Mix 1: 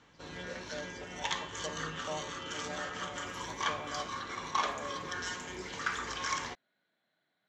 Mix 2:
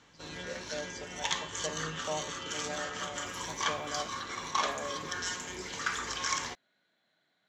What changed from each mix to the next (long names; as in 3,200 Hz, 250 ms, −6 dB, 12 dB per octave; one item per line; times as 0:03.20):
speech +3.5 dB
master: add high-shelf EQ 5,100 Hz +10 dB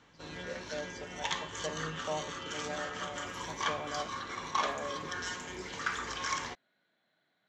master: add high-shelf EQ 5,100 Hz −10 dB